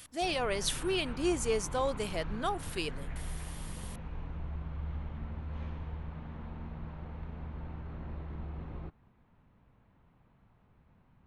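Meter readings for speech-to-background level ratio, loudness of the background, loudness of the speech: 10.0 dB, -43.0 LUFS, -33.0 LUFS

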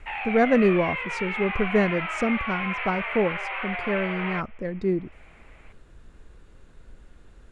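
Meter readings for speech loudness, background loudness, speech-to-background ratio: -26.0 LUFS, -29.5 LUFS, 3.5 dB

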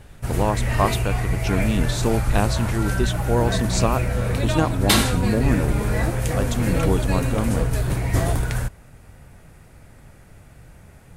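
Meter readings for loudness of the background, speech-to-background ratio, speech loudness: -23.5 LUFS, -2.0 dB, -25.5 LUFS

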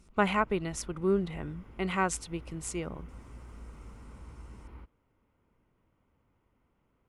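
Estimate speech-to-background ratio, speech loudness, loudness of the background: 18.5 dB, -32.0 LUFS, -50.5 LUFS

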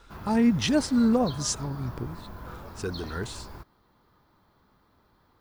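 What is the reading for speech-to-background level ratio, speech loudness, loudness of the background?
16.0 dB, -26.0 LUFS, -42.0 LUFS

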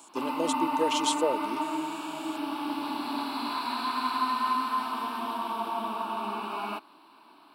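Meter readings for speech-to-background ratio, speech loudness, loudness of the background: -0.5 dB, -31.5 LUFS, -31.0 LUFS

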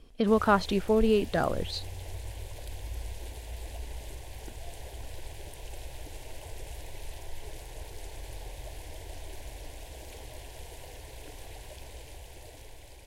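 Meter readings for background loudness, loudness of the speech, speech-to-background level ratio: -44.0 LUFS, -26.5 LUFS, 17.5 dB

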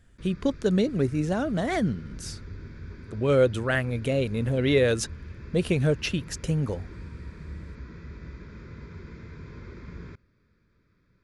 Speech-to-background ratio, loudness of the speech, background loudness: 17.0 dB, -26.0 LUFS, -43.0 LUFS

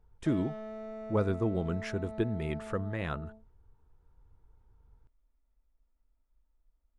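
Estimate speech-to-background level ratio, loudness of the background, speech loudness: 10.5 dB, -44.0 LUFS, -33.5 LUFS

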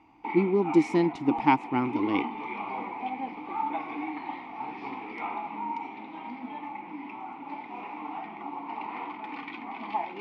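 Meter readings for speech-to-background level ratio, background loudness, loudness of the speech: 10.5 dB, -36.5 LUFS, -26.0 LUFS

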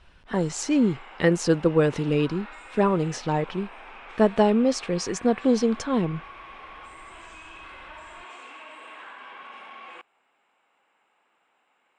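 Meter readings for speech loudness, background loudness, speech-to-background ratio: -24.0 LUFS, -43.5 LUFS, 19.5 dB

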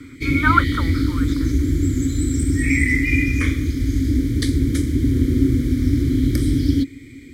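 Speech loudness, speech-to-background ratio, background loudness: -20.5 LUFS, -1.0 dB, -19.5 LUFS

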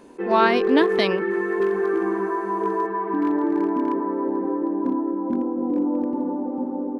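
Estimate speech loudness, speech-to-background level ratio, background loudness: -21.5 LUFS, 2.0 dB, -23.5 LUFS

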